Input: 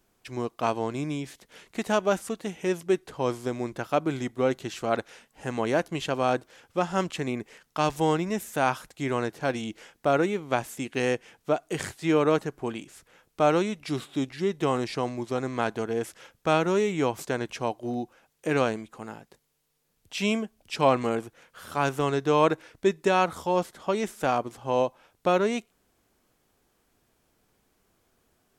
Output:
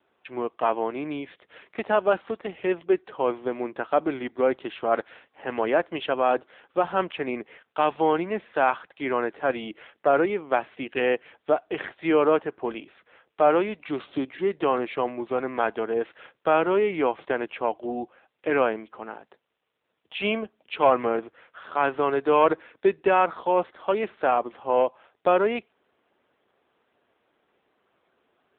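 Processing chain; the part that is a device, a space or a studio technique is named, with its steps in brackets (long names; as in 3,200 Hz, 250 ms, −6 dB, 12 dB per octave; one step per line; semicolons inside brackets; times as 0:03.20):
telephone (band-pass filter 340–3,500 Hz; soft clipping −12 dBFS, distortion −22 dB; level +5 dB; AMR narrowband 7.95 kbit/s 8,000 Hz)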